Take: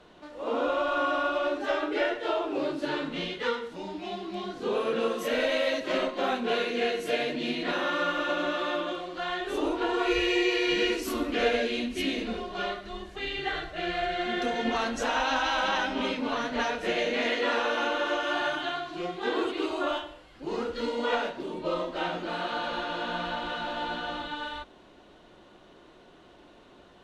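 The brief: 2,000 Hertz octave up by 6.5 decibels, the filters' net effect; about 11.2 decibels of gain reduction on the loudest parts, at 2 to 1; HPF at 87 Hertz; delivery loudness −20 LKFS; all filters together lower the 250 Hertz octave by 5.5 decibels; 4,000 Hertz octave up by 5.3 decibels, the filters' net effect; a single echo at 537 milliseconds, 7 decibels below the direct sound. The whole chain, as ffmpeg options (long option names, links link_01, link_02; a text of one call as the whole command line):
ffmpeg -i in.wav -af "highpass=87,equalizer=frequency=250:width_type=o:gain=-8,equalizer=frequency=2000:width_type=o:gain=8,equalizer=frequency=4000:width_type=o:gain=3.5,acompressor=threshold=-41dB:ratio=2,aecho=1:1:537:0.447,volume=15dB" out.wav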